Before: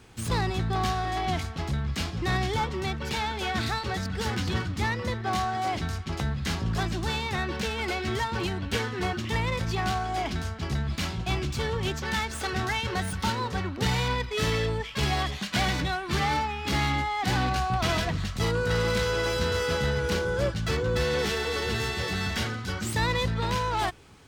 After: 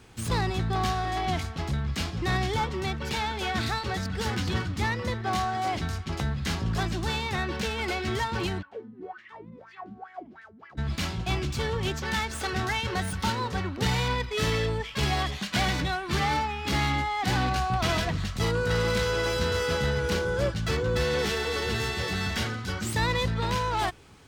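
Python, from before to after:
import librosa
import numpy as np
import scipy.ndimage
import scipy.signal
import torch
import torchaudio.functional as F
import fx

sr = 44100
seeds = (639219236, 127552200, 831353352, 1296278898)

y = fx.wah_lfo(x, sr, hz=fx.line((8.61, 1.2), (10.77, 4.4)), low_hz=200.0, high_hz=2000.0, q=8.3, at=(8.61, 10.77), fade=0.02)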